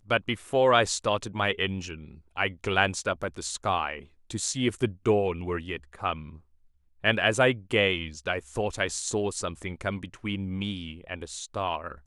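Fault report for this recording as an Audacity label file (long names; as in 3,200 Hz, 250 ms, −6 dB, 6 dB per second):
3.230000	3.230000	drop-out 3.6 ms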